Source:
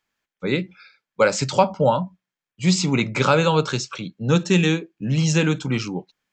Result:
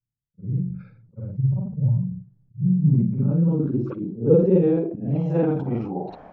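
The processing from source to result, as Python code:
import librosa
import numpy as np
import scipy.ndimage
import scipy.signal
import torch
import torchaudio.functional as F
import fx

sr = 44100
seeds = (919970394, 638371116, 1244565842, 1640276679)

y = fx.frame_reverse(x, sr, frame_ms=120.0)
y = fx.filter_sweep_lowpass(y, sr, from_hz=120.0, to_hz=700.0, start_s=2.58, end_s=4.95, q=4.6)
y = fx.sustainer(y, sr, db_per_s=61.0)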